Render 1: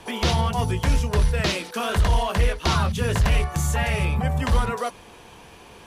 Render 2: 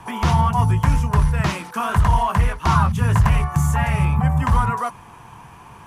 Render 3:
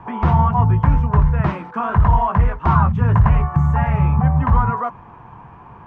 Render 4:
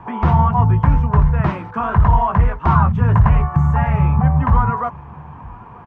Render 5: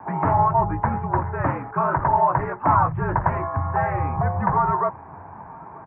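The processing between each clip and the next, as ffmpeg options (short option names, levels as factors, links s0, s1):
-af "equalizer=f=125:t=o:w=1:g=11,equalizer=f=500:t=o:w=1:g=-9,equalizer=f=1000:t=o:w=1:g=11,equalizer=f=4000:t=o:w=1:g=-9"
-af "lowpass=1400,volume=1.33"
-filter_complex "[0:a]asplit=2[s0][s1];[s1]adelay=932.9,volume=0.0708,highshelf=f=4000:g=-21[s2];[s0][s2]amix=inputs=2:normalize=0,volume=1.12"
-af "highpass=f=190:t=q:w=0.5412,highpass=f=190:t=q:w=1.307,lowpass=f=2100:t=q:w=0.5176,lowpass=f=2100:t=q:w=0.7071,lowpass=f=2100:t=q:w=1.932,afreqshift=-58"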